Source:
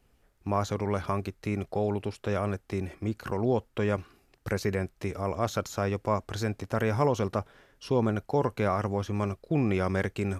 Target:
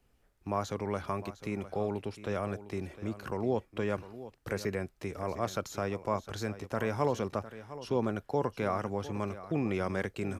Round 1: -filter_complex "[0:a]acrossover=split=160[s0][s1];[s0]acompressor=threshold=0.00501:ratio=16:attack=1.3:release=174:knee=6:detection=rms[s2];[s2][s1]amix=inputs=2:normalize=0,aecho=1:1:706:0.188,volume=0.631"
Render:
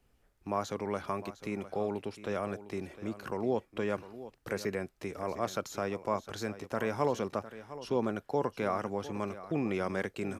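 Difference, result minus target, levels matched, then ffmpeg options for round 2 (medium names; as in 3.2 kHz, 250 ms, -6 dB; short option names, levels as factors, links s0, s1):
compression: peak gain reduction +10.5 dB
-filter_complex "[0:a]acrossover=split=160[s0][s1];[s0]acompressor=threshold=0.0178:ratio=16:attack=1.3:release=174:knee=6:detection=rms[s2];[s2][s1]amix=inputs=2:normalize=0,aecho=1:1:706:0.188,volume=0.631"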